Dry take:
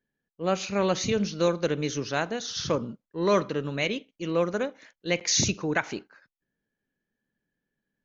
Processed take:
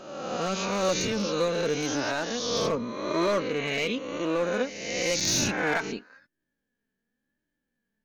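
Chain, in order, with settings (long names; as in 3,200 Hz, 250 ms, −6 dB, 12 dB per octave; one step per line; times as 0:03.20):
peak hold with a rise ahead of every peak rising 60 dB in 1.41 s
in parallel at 0 dB: brickwall limiter −14 dBFS, peak gain reduction 7 dB
on the sum: hard clipping −11 dBFS, distortion −19 dB
flanger 0.94 Hz, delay 3.1 ms, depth 1.5 ms, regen +36%
level −4.5 dB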